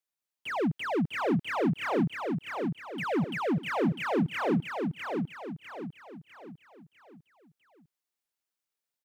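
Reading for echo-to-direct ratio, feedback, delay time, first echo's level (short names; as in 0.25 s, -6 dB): -3.0 dB, 42%, 0.651 s, -4.0 dB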